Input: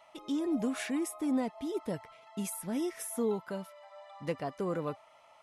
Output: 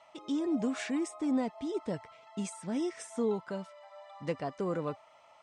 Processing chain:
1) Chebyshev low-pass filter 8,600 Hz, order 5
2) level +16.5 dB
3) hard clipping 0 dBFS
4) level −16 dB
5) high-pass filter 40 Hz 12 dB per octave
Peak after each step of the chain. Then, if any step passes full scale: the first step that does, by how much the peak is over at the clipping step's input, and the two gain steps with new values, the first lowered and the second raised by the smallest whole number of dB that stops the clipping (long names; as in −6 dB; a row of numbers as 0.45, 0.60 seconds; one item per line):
−21.0, −4.5, −4.5, −20.5, −21.0 dBFS
no step passes full scale